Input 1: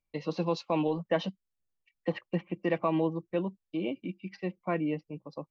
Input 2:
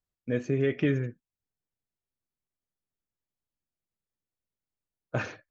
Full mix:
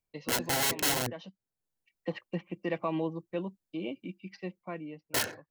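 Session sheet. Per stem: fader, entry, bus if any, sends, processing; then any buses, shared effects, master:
−4.0 dB, 0.00 s, no send, automatic ducking −12 dB, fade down 0.70 s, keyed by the second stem
+2.0 dB, 0.00 s, no send, adaptive Wiener filter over 15 samples; wrap-around overflow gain 26.5 dB; notch comb filter 1,200 Hz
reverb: not used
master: high-shelf EQ 4,400 Hz +8.5 dB

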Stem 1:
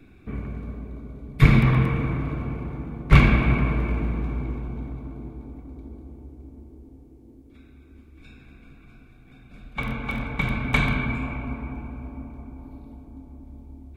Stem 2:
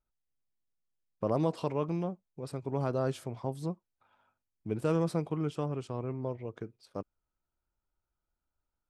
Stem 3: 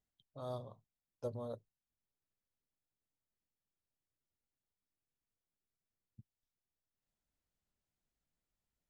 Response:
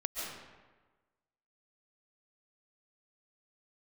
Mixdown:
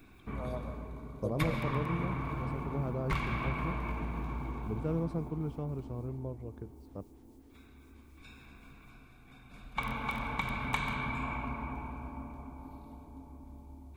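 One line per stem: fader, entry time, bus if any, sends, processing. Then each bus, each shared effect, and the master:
−9.5 dB, 0.00 s, send −10 dB, high-shelf EQ 3,100 Hz +11 dB; downward compressor 4 to 1, threshold −26 dBFS, peak gain reduction 15.5 dB; parametric band 980 Hz +11.5 dB 0.7 octaves
−10.0 dB, 0.00 s, no send, spectral tilt −3 dB per octave
+2.0 dB, 0.00 s, send −8.5 dB, upward compression, threshold −59 dBFS; phaser with staggered stages 3.8 Hz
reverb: on, RT60 1.3 s, pre-delay 100 ms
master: no processing

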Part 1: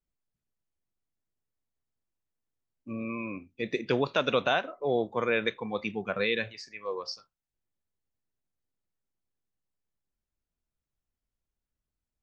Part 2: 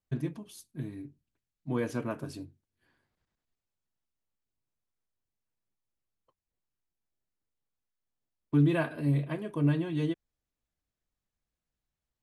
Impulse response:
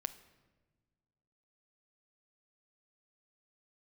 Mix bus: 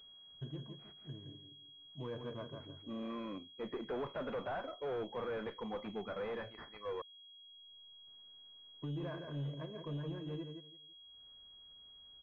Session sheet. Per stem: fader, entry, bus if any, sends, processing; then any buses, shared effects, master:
−1.0 dB, 0.00 s, muted 0:07.02–0:08.07, no send, no echo send, low-shelf EQ 140 Hz −11.5 dB; tube saturation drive 32 dB, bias 0.3
−10.0 dB, 0.30 s, no send, echo send −7 dB, comb filter 1.9 ms, depth 45%; brickwall limiter −22.5 dBFS, peak gain reduction 6.5 dB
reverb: not used
echo: repeating echo 167 ms, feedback 19%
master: upward compression, threshold −56 dBFS; soft clipping −32.5 dBFS, distortion −20 dB; switching amplifier with a slow clock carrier 3,300 Hz

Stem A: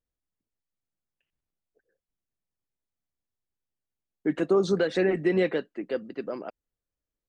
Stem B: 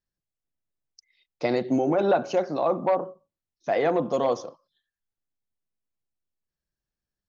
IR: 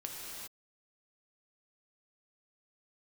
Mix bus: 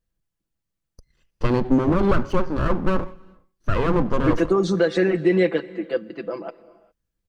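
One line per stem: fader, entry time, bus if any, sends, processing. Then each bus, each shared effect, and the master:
+1.5 dB, 0.00 s, send −15.5 dB, comb filter 6 ms, depth 75%
+1.5 dB, 0.00 s, send −23 dB, lower of the sound and its delayed copy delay 0.65 ms; spectral tilt −2.5 dB per octave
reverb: on, pre-delay 3 ms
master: no processing

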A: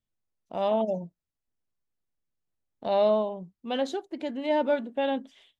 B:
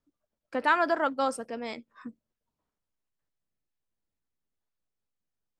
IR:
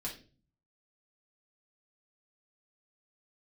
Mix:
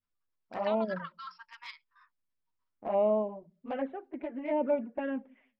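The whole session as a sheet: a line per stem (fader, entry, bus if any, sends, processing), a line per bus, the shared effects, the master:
−2.0 dB, 0.00 s, send −18 dB, elliptic low-pass filter 2,400 Hz, stop band 50 dB
+2.0 dB, 0.00 s, no send, output level in coarse steps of 12 dB; brick-wall band-pass 910–5,600 Hz; downward compressor, threshold −33 dBFS, peak gain reduction 11 dB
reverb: on, RT60 0.35 s, pre-delay 4 ms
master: flanger swept by the level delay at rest 11.7 ms, full sweep at −23 dBFS

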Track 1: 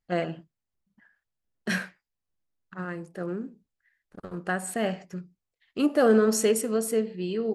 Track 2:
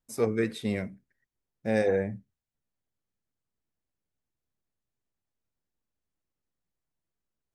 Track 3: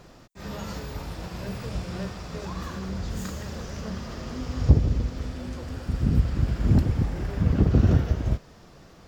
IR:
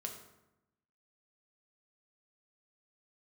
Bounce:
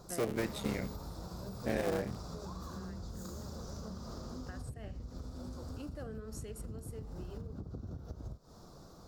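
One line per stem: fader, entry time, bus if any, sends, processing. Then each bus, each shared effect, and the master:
−14.5 dB, 0.00 s, bus A, no send, no processing
−0.5 dB, 0.00 s, no bus, no send, sub-harmonics by changed cycles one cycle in 3, muted; downward compressor 2.5 to 1, threshold −32 dBFS, peak gain reduction 8 dB
−4.0 dB, 0.00 s, bus A, no send, flat-topped bell 2,300 Hz −16 dB 1.1 octaves; downward compressor, threshold −26 dBFS, peak gain reduction 16 dB
bus A: 0.0 dB, downward compressor 10 to 1, threshold −40 dBFS, peak gain reduction 14.5 dB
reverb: not used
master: high-shelf EQ 9,400 Hz +5 dB

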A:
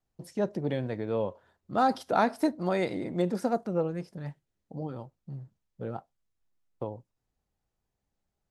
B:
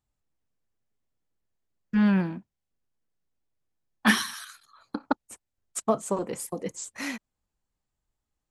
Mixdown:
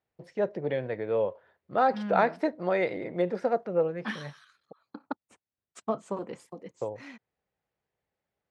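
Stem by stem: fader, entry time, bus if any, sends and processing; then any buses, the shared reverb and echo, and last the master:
−3.0 dB, 0.00 s, muted 0:04.73–0:06.53, no send, octave-band graphic EQ 250/500/2,000 Hz −5/+8/+8 dB
−5.5 dB, 0.00 s, no send, automatic ducking −8 dB, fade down 0.50 s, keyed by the first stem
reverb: not used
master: band-pass filter 100–3,900 Hz

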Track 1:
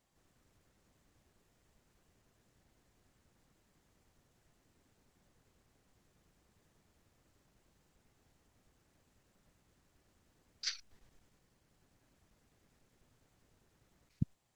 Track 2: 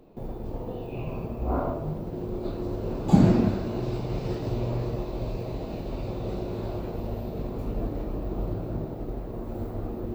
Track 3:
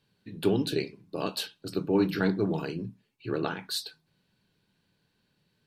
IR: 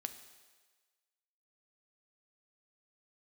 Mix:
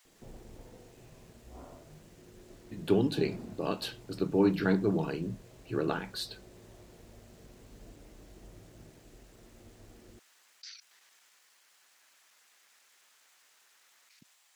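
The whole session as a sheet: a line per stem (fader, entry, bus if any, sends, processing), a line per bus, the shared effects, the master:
−4.5 dB, 0.00 s, no send, high-pass filter 1,400 Hz 12 dB per octave; brickwall limiter −32.5 dBFS, peak gain reduction 9 dB; envelope flattener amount 50%
−10.5 dB, 0.05 s, no send, automatic ducking −12 dB, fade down 1.10 s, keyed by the first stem
−0.5 dB, 2.45 s, no send, high-shelf EQ 3,600 Hz −8 dB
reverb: not used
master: no processing

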